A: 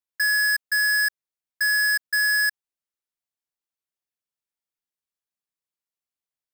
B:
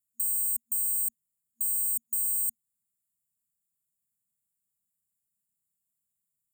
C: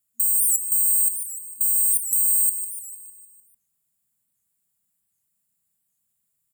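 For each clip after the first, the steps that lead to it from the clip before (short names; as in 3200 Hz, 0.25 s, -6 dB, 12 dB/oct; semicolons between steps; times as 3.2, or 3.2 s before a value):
HPF 68 Hz; FFT band-reject 230–6800 Hz; in parallel at +0.5 dB: negative-ratio compressor -36 dBFS, ratio -0.5
feedback echo 0.151 s, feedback 59%, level -11 dB; on a send at -13 dB: reverb RT60 2.7 s, pre-delay 62 ms; on the sum: record warp 78 rpm, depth 160 cents; gain +8 dB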